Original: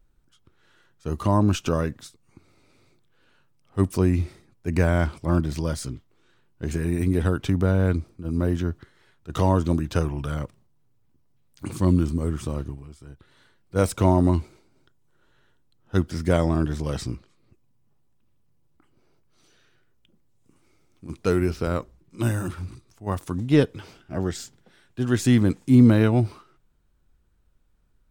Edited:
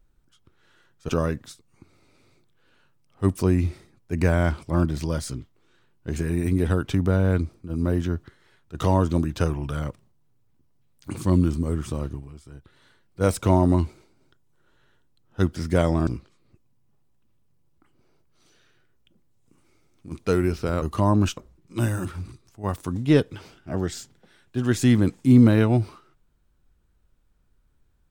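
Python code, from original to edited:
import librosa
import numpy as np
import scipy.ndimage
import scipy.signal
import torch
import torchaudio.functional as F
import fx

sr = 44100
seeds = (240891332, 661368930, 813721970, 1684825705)

y = fx.edit(x, sr, fx.move(start_s=1.09, length_s=0.55, to_s=21.8),
    fx.cut(start_s=16.62, length_s=0.43), tone=tone)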